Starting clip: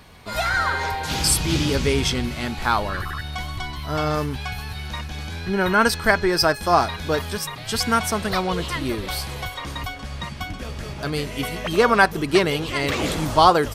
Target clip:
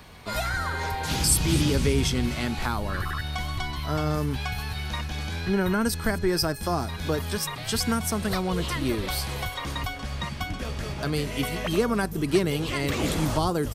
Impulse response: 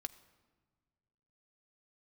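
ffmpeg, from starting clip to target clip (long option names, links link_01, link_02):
-filter_complex "[0:a]acrossover=split=340|7000[link_01][link_02][link_03];[link_02]acompressor=threshold=-28dB:ratio=6[link_04];[link_03]aecho=1:1:244|488|732:0.168|0.0621|0.023[link_05];[link_01][link_04][link_05]amix=inputs=3:normalize=0"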